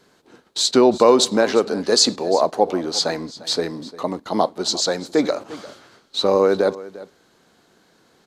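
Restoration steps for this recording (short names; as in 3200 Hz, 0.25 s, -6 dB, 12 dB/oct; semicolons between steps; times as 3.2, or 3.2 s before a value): inverse comb 0.35 s -18 dB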